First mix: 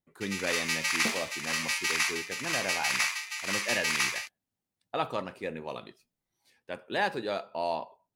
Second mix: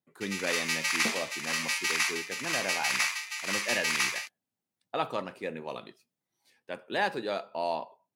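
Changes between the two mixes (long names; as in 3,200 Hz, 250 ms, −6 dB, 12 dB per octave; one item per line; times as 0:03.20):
second sound: add low-pass filter 10,000 Hz
master: add high-pass filter 130 Hz 12 dB per octave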